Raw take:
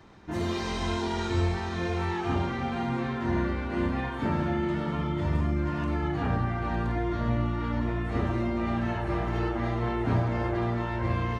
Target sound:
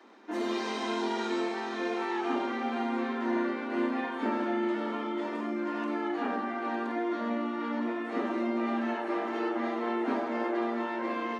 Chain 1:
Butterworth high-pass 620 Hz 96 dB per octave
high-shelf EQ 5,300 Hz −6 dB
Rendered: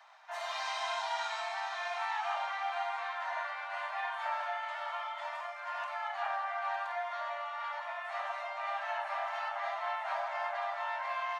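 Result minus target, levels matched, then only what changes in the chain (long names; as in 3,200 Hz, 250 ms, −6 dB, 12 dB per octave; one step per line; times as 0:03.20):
500 Hz band −4.5 dB
change: Butterworth high-pass 220 Hz 96 dB per octave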